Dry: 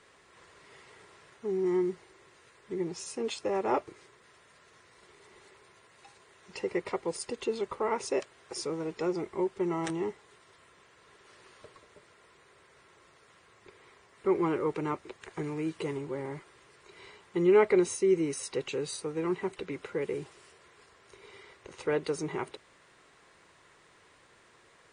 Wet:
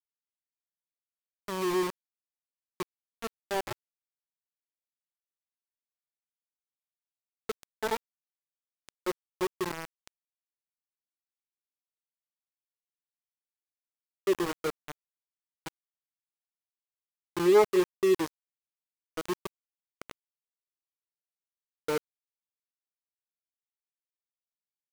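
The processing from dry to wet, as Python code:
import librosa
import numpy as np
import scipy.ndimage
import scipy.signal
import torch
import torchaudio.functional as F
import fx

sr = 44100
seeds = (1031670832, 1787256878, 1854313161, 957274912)

y = fx.hpss_only(x, sr, part='harmonic')
y = fx.low_shelf(y, sr, hz=300.0, db=-11.5)
y = fx.env_phaser(y, sr, low_hz=550.0, high_hz=4100.0, full_db=-26.5)
y = np.where(np.abs(y) >= 10.0 ** (-32.5 / 20.0), y, 0.0)
y = fx.vibrato(y, sr, rate_hz=1.7, depth_cents=15.0)
y = y * 10.0 ** (5.5 / 20.0)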